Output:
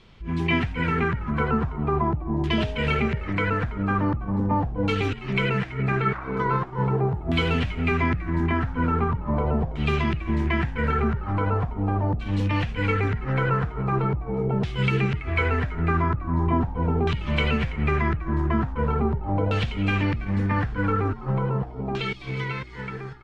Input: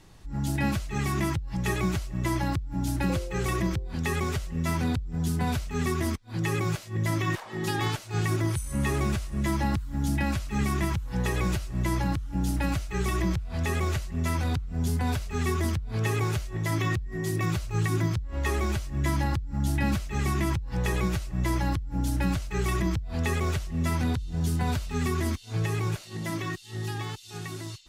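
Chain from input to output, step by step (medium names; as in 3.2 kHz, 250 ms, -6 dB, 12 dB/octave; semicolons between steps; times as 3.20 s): frequency-shifting echo 396 ms, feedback 40%, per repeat -59 Hz, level -14 dB; in parallel at -7 dB: crossover distortion -43 dBFS; on the sum: tape speed +20%; LFO low-pass saw down 0.41 Hz 720–3400 Hz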